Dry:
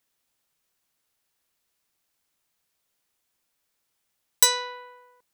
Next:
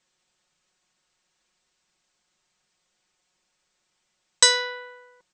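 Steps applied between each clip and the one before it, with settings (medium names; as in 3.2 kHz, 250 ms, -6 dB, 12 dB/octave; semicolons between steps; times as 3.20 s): steep low-pass 8.3 kHz 96 dB/octave; comb 5.5 ms; trim +4.5 dB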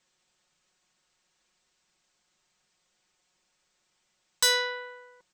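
saturation -18 dBFS, distortion -6 dB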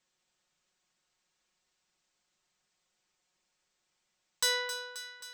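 thinning echo 266 ms, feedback 65%, level -11 dB; trim -6 dB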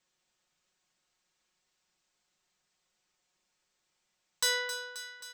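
doubling 33 ms -11 dB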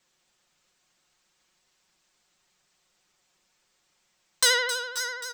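delay 544 ms -12 dB; vibrato 12 Hz 63 cents; trim +8 dB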